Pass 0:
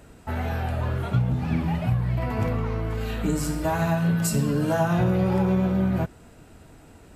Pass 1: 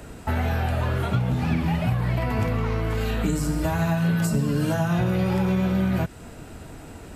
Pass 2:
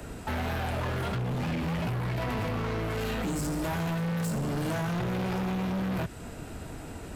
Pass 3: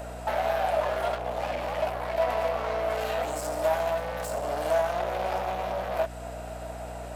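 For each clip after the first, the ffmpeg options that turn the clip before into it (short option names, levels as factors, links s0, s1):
-filter_complex "[0:a]acrossover=split=230|1600[s0][s1][s2];[s0]acompressor=threshold=0.0251:ratio=4[s3];[s1]acompressor=threshold=0.0126:ratio=4[s4];[s2]acompressor=threshold=0.00562:ratio=4[s5];[s3][s4][s5]amix=inputs=3:normalize=0,volume=2.66"
-filter_complex "[0:a]acrossover=split=110|3300[s0][s1][s2];[s0]alimiter=level_in=2.51:limit=0.0631:level=0:latency=1,volume=0.398[s3];[s3][s1][s2]amix=inputs=3:normalize=0,asoftclip=type=hard:threshold=0.0376"
-af "highpass=f=640:t=q:w=4.9,aeval=exprs='val(0)+0.01*(sin(2*PI*60*n/s)+sin(2*PI*2*60*n/s)/2+sin(2*PI*3*60*n/s)/3+sin(2*PI*4*60*n/s)/4+sin(2*PI*5*60*n/s)/5)':c=same"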